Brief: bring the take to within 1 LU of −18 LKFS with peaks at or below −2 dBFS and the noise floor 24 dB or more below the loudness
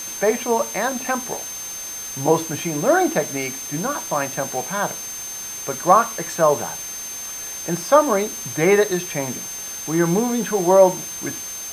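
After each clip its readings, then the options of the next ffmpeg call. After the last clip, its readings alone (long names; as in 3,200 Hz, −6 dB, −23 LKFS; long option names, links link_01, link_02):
interfering tone 6,300 Hz; level of the tone −30 dBFS; background noise floor −32 dBFS; target noise floor −45 dBFS; integrated loudness −21.0 LKFS; sample peak −1.5 dBFS; target loudness −18.0 LKFS
→ -af "bandreject=frequency=6300:width=30"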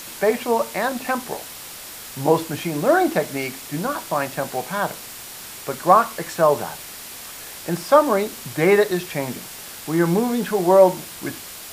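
interfering tone none found; background noise floor −37 dBFS; target noise floor −45 dBFS
→ -af "afftdn=noise_reduction=8:noise_floor=-37"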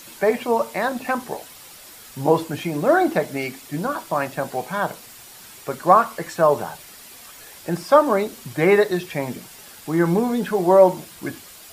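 background noise floor −43 dBFS; target noise floor −45 dBFS
→ -af "afftdn=noise_reduction=6:noise_floor=-43"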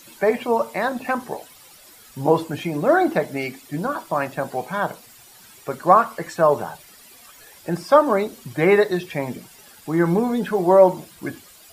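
background noise floor −48 dBFS; integrated loudness −20.5 LKFS; sample peak −2.0 dBFS; target loudness −18.0 LKFS
→ -af "volume=2.5dB,alimiter=limit=-2dB:level=0:latency=1"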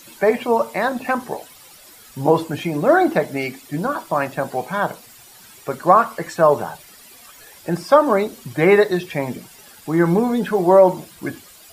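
integrated loudness −18.5 LKFS; sample peak −2.0 dBFS; background noise floor −45 dBFS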